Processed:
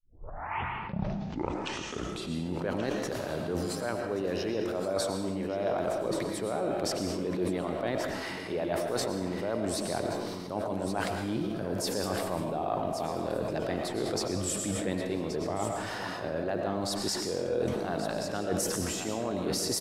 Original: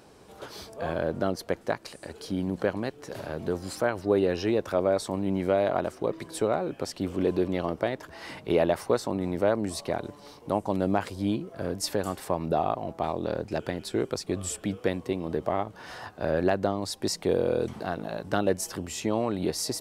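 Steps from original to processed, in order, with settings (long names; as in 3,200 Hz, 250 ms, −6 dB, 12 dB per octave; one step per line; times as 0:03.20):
turntable start at the beginning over 2.68 s
high-pass filter 48 Hz 6 dB per octave
reversed playback
downward compressor 10 to 1, threshold −33 dBFS, peak gain reduction 15.5 dB
reversed playback
single-tap delay 1,128 ms −11 dB
on a send at −3.5 dB: convolution reverb RT60 0.90 s, pre-delay 70 ms
on the sum: level that may fall only so fast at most 24 dB per second
level +3.5 dB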